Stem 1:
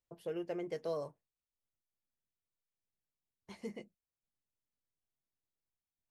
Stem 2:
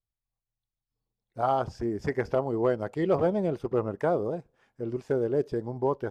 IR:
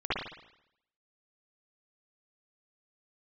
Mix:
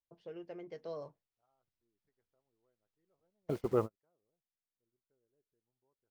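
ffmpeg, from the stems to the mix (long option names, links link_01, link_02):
-filter_complex "[0:a]lowpass=frequency=5500:width=0.5412,lowpass=frequency=5500:width=1.3066,volume=-1dB,afade=type=in:start_time=0.71:duration=0.78:silence=0.473151,afade=type=out:start_time=3.36:duration=0.27:silence=0.316228,asplit=2[link_01][link_02];[1:a]equalizer=frequency=1300:width_type=o:width=0.22:gain=4,acrusher=bits=8:mix=0:aa=0.000001,volume=-3.5dB[link_03];[link_02]apad=whole_len=269437[link_04];[link_03][link_04]sidechaingate=range=-52dB:threshold=-60dB:ratio=16:detection=peak[link_05];[link_01][link_05]amix=inputs=2:normalize=0"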